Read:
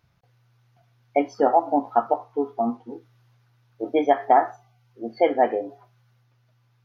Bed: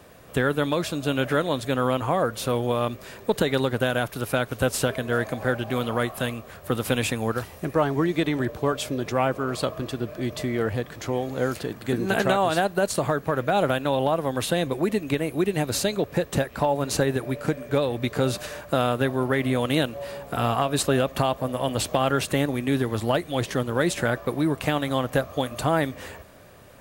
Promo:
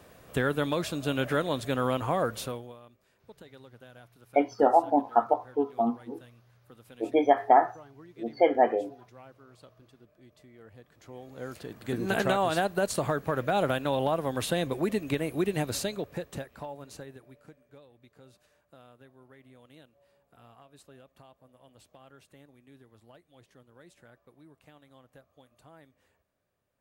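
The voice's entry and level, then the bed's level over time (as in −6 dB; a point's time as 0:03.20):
3.20 s, −2.5 dB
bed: 0:02.39 −4.5 dB
0:02.82 −28 dB
0:10.57 −28 dB
0:12.06 −4.5 dB
0:15.60 −4.5 dB
0:17.88 −32 dB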